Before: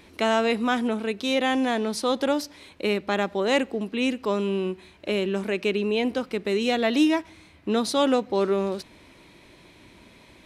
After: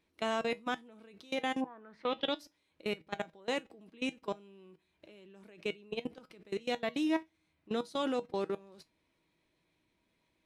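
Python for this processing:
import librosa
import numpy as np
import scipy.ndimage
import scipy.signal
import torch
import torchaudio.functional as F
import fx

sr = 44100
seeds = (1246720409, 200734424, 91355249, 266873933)

y = fx.level_steps(x, sr, step_db=23)
y = fx.lowpass_res(y, sr, hz=fx.line((1.6, 870.0), (2.34, 4100.0)), q=6.3, at=(1.6, 2.34), fade=0.02)
y = fx.comb_fb(y, sr, f0_hz=160.0, decay_s=0.16, harmonics='all', damping=0.0, mix_pct=60)
y = y * 10.0 ** (-3.5 / 20.0)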